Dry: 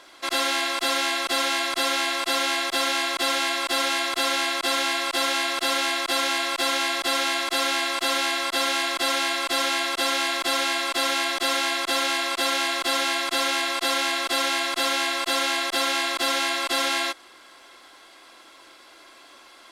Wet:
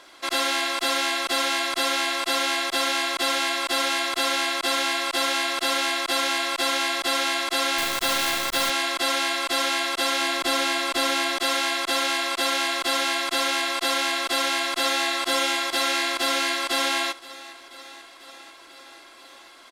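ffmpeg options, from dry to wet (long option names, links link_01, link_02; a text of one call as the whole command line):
ffmpeg -i in.wav -filter_complex "[0:a]asettb=1/sr,asplit=3[link_01][link_02][link_03];[link_01]atrim=end=7.784[link_04];[link_02]atrim=start=7.78:end=8.7,asetpts=PTS-STARTPTS,afade=type=in:duration=0.004:curve=qsin,afade=type=out:start_time=0.916:duration=0.004:curve=qsin,acrusher=bits=5:dc=4:mix=0:aa=0.000001[link_05];[link_03]atrim=start=8.696[link_06];[link_04][link_05]acrossfade=duration=0.004:curve1=hsin:curve2=qsin[link_07];[link_07][link_06]acrossfade=duration=0.004:curve1=qsin:curve2=hsin,asettb=1/sr,asplit=3[link_08][link_09][link_10];[link_08]atrim=end=10.214[link_11];[link_09]atrim=start=10.21:end=11.38,asetpts=PTS-STARTPTS,afade=type=in:duration=0.004:curve=qsin,afade=type=out:start_time=1.166:duration=0.004:curve=qsin,lowshelf=frequency=290:gain=7.5[link_12];[link_10]atrim=start=11.376[link_13];[link_11][link_12]acrossfade=duration=0.004:curve1=hsin:curve2=qsin[link_14];[link_14][link_13]acrossfade=duration=0.004:curve1=qsin:curve2=hsin,asplit=2[link_15][link_16];[link_16]afade=type=in:start_time=14.35:duration=0.01,afade=type=out:start_time=15.07:duration=0.01,aecho=0:1:490|980|1470|1960|2450|2940|3430|3920|4410|4900|5390|5880:0.354813|0.26611|0.199583|0.149687|0.112265|0.0841989|0.0631492|0.0473619|0.0355214|0.0266411|0.0199808|0.0149856[link_17];[link_15][link_17]amix=inputs=2:normalize=0" out.wav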